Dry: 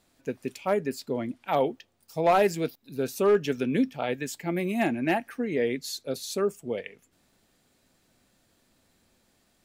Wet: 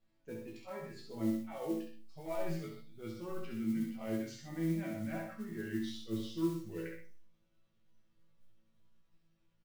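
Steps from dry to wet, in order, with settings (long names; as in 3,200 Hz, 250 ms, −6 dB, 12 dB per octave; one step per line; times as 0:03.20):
pitch glide at a constant tempo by −4.5 semitones starting unshifted
low-pass filter 4,300 Hz 12 dB per octave
low-shelf EQ 120 Hz +10 dB
reversed playback
downward compressor 6 to 1, threshold −30 dBFS, peak gain reduction 12.5 dB
reversed playback
resonators tuned to a chord A2 fifth, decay 0.31 s
noise reduction from a noise print of the clip's start 7 dB
noise that follows the level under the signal 21 dB
loudspeakers that aren't time-aligned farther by 23 metres −5 dB, 43 metres −11 dB
convolution reverb RT60 0.35 s, pre-delay 4 ms, DRR 5 dB
level +3.5 dB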